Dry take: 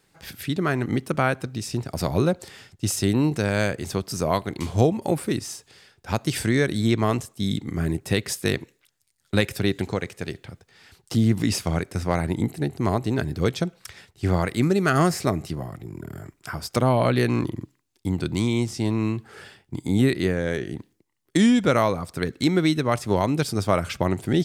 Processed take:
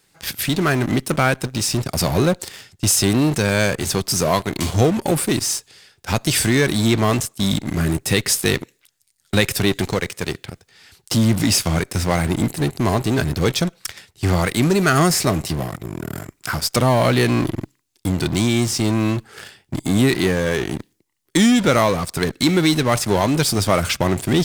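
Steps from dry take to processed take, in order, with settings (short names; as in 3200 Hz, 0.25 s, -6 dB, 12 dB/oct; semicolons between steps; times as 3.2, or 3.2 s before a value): high shelf 2300 Hz +7.5 dB; in parallel at -9.5 dB: fuzz box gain 35 dB, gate -35 dBFS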